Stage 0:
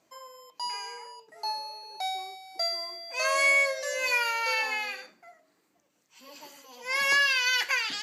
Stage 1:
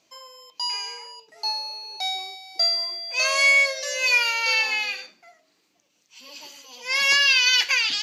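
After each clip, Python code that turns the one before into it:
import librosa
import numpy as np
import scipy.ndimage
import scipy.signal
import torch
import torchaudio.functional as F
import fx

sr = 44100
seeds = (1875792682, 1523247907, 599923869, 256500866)

y = fx.band_shelf(x, sr, hz=3900.0, db=9.5, octaves=1.7)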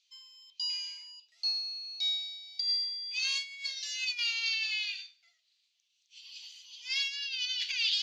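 y = fx.over_compress(x, sr, threshold_db=-22.0, ratio=-0.5)
y = fx.ladder_bandpass(y, sr, hz=4000.0, resonance_pct=50)
y = y * librosa.db_to_amplitude(1.5)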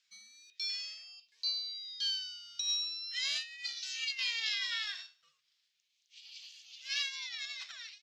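y = fx.fade_out_tail(x, sr, length_s=0.99)
y = fx.ring_lfo(y, sr, carrier_hz=550.0, swing_pct=60, hz=0.39)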